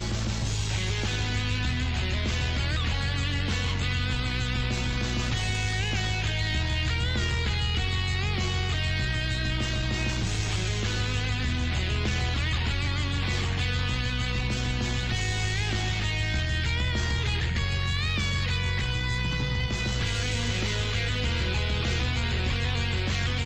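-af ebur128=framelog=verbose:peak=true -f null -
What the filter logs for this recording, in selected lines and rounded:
Integrated loudness:
  I:         -27.5 LUFS
  Threshold: -37.5 LUFS
Loudness range:
  LRA:         0.6 LU
  Threshold: -47.5 LUFS
  LRA low:   -27.7 LUFS
  LRA high:  -27.1 LUFS
True peak:
  Peak:      -15.7 dBFS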